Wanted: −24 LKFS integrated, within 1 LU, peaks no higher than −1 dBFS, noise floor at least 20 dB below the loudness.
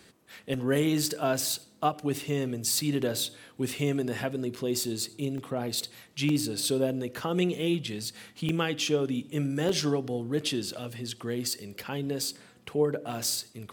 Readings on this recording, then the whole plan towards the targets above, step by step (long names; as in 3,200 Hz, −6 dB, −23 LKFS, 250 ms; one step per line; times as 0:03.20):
number of dropouts 8; longest dropout 2.8 ms; integrated loudness −30.0 LKFS; sample peak −12.0 dBFS; target loudness −24.0 LKFS
→ repair the gap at 0:00.54/0:02.22/0:04.84/0:05.38/0:06.29/0:08.49/0:09.69/0:13.24, 2.8 ms
level +6 dB